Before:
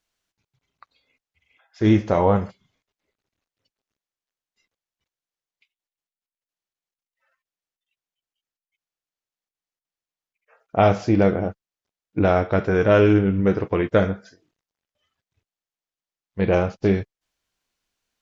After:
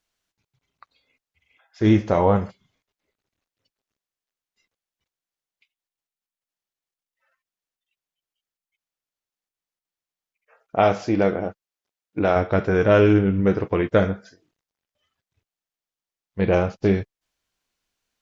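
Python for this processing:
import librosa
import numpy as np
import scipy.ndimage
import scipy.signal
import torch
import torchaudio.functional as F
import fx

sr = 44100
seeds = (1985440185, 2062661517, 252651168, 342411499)

y = fx.low_shelf(x, sr, hz=160.0, db=-11.0, at=(10.76, 12.36))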